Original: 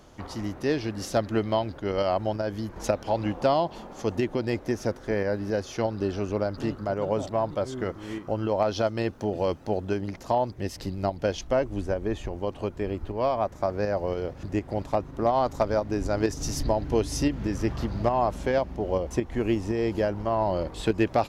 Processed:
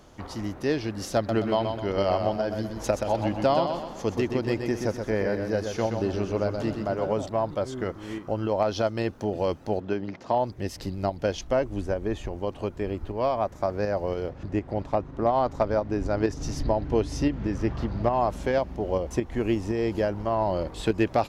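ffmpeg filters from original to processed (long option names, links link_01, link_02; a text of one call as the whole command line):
ffmpeg -i in.wav -filter_complex "[0:a]asettb=1/sr,asplit=3[link_01][link_02][link_03];[link_01]atrim=end=1.164[link_04];[link_02]atrim=start=1.16:end=7.13,asetpts=PTS-STARTPTS,afade=type=in:duration=0.004:curve=qsin,afade=type=out:start_time=5.966:duration=0.004:curve=qsin,aecho=1:1:126|252|378|504|630:0.501|0.2|0.0802|0.0321|0.0128,atrim=end_sample=263277[link_05];[link_03]atrim=start=7.126[link_06];[link_04][link_05]acrossfade=duration=0.004:curve1=hsin:curve2=qsin[link_07];[link_07][link_06]acrossfade=duration=0.004:curve1=qsin:curve2=hsin,asplit=3[link_08][link_09][link_10];[link_08]afade=type=out:start_time=9.79:duration=0.02[link_11];[link_09]highpass=130,lowpass=4200,afade=type=in:start_time=9.79:duration=0.02,afade=type=out:start_time=10.33:duration=0.02[link_12];[link_10]afade=type=in:start_time=10.33:duration=0.02[link_13];[link_11][link_12][link_13]amix=inputs=3:normalize=0,asettb=1/sr,asplit=3[link_14][link_15][link_16];[link_14]atrim=end=14.294[link_17];[link_15]atrim=start=14.29:end=18.13,asetpts=PTS-STARTPTS,afade=type=in:duration=0.004:curve=qsin,afade=type=out:start_time=3.836:duration=0.004:curve=qsin,aemphasis=mode=reproduction:type=50fm[link_18];[link_16]atrim=start=18.126[link_19];[link_17][link_18]acrossfade=duration=0.004:curve1=hsin:curve2=qsin[link_20];[link_20][link_19]acrossfade=duration=0.004:curve1=qsin:curve2=hsin" out.wav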